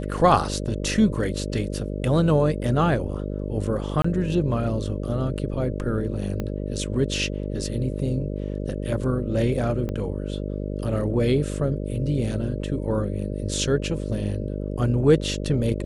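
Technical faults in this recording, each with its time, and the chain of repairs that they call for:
buzz 50 Hz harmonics 12 -29 dBFS
4.02–4.04 gap 24 ms
6.4 pop -16 dBFS
9.89 pop -18 dBFS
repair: de-click; de-hum 50 Hz, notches 12; interpolate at 4.02, 24 ms

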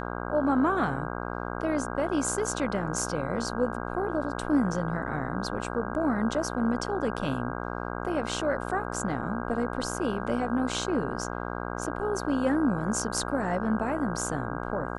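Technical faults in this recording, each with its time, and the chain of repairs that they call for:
buzz 60 Hz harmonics 27 -34 dBFS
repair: de-hum 60 Hz, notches 27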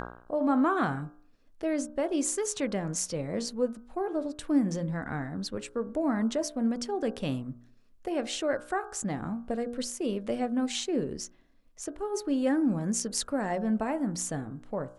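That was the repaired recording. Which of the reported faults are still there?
none

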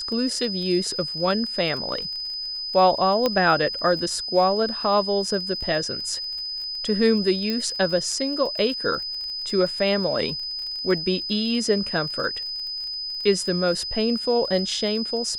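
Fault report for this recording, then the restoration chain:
crackle 29/s -31 dBFS
tone 5000 Hz -28 dBFS
3.26 pop -8 dBFS
7.5 pop -14 dBFS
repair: de-click; notch 5000 Hz, Q 30

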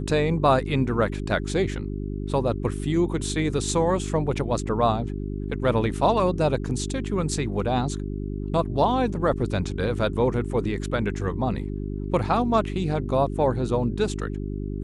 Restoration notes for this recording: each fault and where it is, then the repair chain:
hum 50 Hz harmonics 8 -30 dBFS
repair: de-hum 50 Hz, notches 8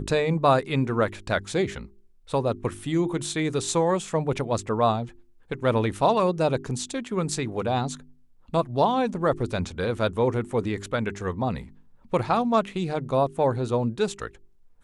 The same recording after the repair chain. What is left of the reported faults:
none

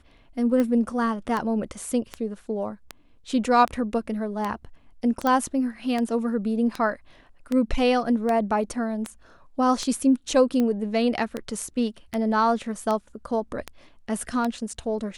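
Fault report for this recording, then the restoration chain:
tick 78 rpm -14 dBFS
5.27 pop -12 dBFS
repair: de-click

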